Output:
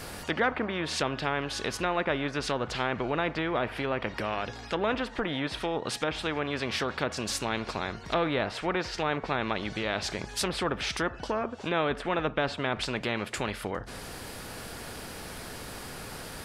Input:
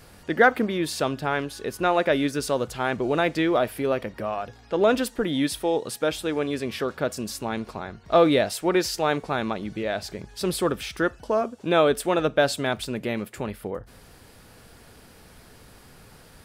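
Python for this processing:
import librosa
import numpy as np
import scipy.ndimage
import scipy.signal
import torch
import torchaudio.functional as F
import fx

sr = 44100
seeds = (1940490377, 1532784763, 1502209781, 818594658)

y = fx.env_lowpass_down(x, sr, base_hz=1500.0, full_db=-20.5)
y = fx.spectral_comp(y, sr, ratio=2.0)
y = F.gain(torch.from_numpy(y), -7.0).numpy()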